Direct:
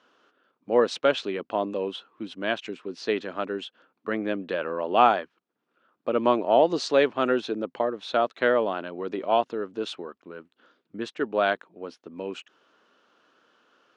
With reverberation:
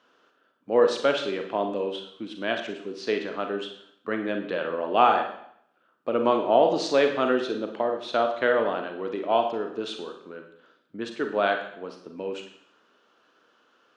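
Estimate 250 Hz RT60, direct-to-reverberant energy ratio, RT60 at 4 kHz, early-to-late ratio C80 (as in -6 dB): 0.65 s, 4.5 dB, 0.65 s, 10.5 dB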